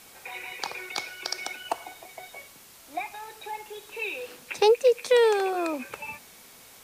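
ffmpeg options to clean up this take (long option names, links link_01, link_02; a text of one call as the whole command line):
ffmpeg -i in.wav -af "afftdn=noise_reduction=19:noise_floor=-51" out.wav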